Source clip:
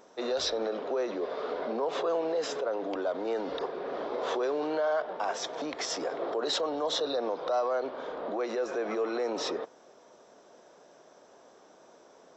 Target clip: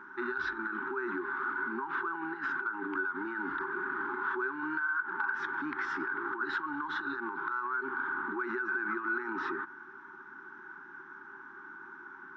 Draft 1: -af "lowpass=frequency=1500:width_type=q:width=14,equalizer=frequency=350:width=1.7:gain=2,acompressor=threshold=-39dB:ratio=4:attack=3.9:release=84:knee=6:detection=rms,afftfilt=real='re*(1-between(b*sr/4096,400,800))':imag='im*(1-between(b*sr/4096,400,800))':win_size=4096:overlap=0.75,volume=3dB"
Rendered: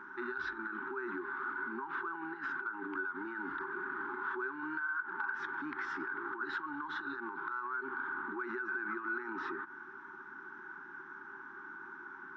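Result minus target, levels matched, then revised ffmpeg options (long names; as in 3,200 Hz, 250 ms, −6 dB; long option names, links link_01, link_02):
downward compressor: peak gain reduction +4.5 dB
-af "lowpass=frequency=1500:width_type=q:width=14,equalizer=frequency=350:width=1.7:gain=2,acompressor=threshold=-33dB:ratio=4:attack=3.9:release=84:knee=6:detection=rms,afftfilt=real='re*(1-between(b*sr/4096,400,800))':imag='im*(1-between(b*sr/4096,400,800))':win_size=4096:overlap=0.75,volume=3dB"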